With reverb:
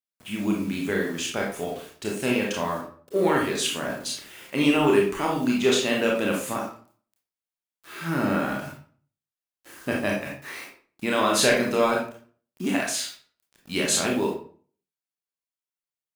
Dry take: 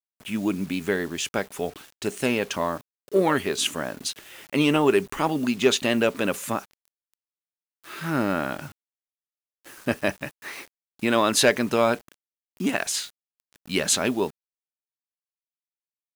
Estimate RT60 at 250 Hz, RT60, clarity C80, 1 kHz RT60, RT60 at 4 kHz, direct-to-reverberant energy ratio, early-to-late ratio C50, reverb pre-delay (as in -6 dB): 0.55 s, 0.45 s, 9.0 dB, 0.45 s, 0.35 s, -2.0 dB, 4.0 dB, 25 ms